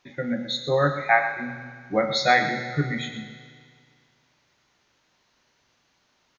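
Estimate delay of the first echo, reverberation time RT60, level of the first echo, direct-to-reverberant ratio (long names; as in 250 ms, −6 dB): 120 ms, 2.0 s, −12.0 dB, 5.5 dB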